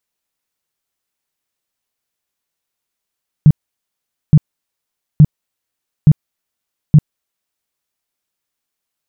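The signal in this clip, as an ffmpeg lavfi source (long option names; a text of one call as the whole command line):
ffmpeg -f lavfi -i "aevalsrc='0.841*sin(2*PI*151*mod(t,0.87))*lt(mod(t,0.87),7/151)':duration=4.35:sample_rate=44100" out.wav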